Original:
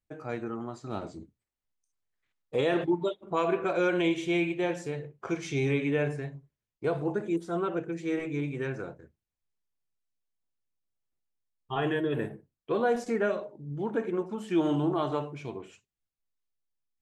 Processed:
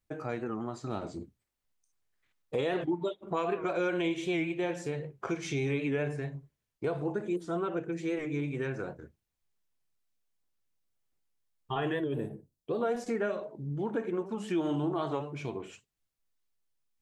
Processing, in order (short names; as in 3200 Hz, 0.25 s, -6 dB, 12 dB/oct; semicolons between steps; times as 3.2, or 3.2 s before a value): 12.04–12.82 bell 1700 Hz -12.5 dB 1.8 oct; compressor 2:1, threshold -39 dBFS, peak gain reduction 10 dB; record warp 78 rpm, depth 100 cents; gain +4.5 dB